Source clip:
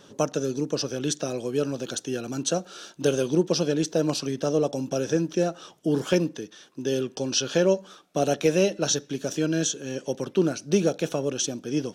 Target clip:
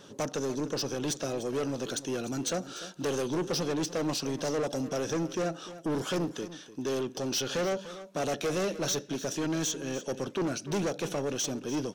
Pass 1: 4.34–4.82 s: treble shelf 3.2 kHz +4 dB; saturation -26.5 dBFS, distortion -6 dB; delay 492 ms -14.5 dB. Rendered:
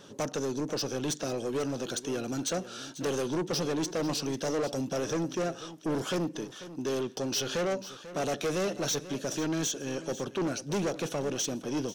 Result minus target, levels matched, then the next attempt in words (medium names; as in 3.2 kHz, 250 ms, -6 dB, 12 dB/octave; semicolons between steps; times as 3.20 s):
echo 195 ms late
4.34–4.82 s: treble shelf 3.2 kHz +4 dB; saturation -26.5 dBFS, distortion -6 dB; delay 297 ms -14.5 dB